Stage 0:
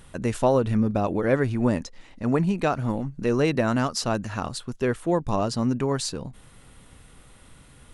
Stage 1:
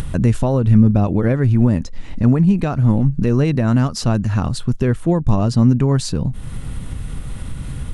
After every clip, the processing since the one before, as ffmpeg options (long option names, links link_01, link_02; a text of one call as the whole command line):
ffmpeg -i in.wav -af "alimiter=limit=-17.5dB:level=0:latency=1:release=457,bass=frequency=250:gain=14,treble=frequency=4000:gain=-1,acompressor=mode=upward:threshold=-22dB:ratio=2.5,volume=5.5dB" out.wav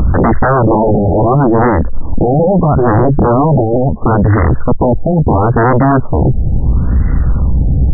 ffmpeg -i in.wav -af "equalizer=frequency=63:width_type=o:width=0.52:gain=10,aeval=exprs='0.841*sin(PI/2*6.31*val(0)/0.841)':channel_layout=same,afftfilt=real='re*lt(b*sr/1024,810*pow(2100/810,0.5+0.5*sin(2*PI*0.74*pts/sr)))':imag='im*lt(b*sr/1024,810*pow(2100/810,0.5+0.5*sin(2*PI*0.74*pts/sr)))':win_size=1024:overlap=0.75,volume=-4dB" out.wav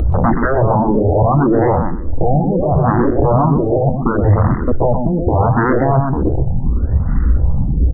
ffmpeg -i in.wav -filter_complex "[0:a]asplit=2[link_01][link_02];[link_02]adelay=125,lowpass=frequency=1200:poles=1,volume=-4dB,asplit=2[link_03][link_04];[link_04]adelay=125,lowpass=frequency=1200:poles=1,volume=0.3,asplit=2[link_05][link_06];[link_06]adelay=125,lowpass=frequency=1200:poles=1,volume=0.3,asplit=2[link_07][link_08];[link_08]adelay=125,lowpass=frequency=1200:poles=1,volume=0.3[link_09];[link_03][link_05][link_07][link_09]amix=inputs=4:normalize=0[link_10];[link_01][link_10]amix=inputs=2:normalize=0,asplit=2[link_11][link_12];[link_12]afreqshift=1.9[link_13];[link_11][link_13]amix=inputs=2:normalize=1,volume=-2dB" out.wav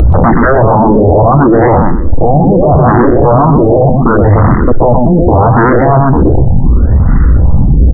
ffmpeg -i in.wav -af "apsyclip=13dB,volume=-1.5dB" out.wav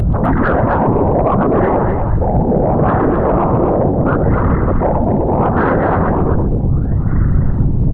ffmpeg -i in.wav -af "afftfilt=real='hypot(re,im)*cos(2*PI*random(0))':imag='hypot(re,im)*sin(2*PI*random(1))':win_size=512:overlap=0.75,asoftclip=type=tanh:threshold=-3dB,aecho=1:1:255:0.531,volume=-1dB" out.wav